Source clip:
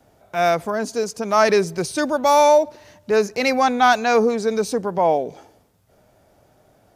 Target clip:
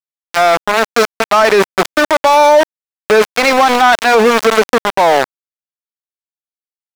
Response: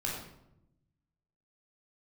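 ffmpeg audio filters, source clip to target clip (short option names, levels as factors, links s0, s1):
-filter_complex "[0:a]aeval=exprs='val(0)*gte(abs(val(0)),0.106)':c=same,asplit=2[s0][s1];[s1]highpass=f=720:p=1,volume=3.55,asoftclip=type=tanh:threshold=0.668[s2];[s0][s2]amix=inputs=2:normalize=0,lowpass=f=3000:p=1,volume=0.501,alimiter=level_in=6.31:limit=0.891:release=50:level=0:latency=1,volume=0.891"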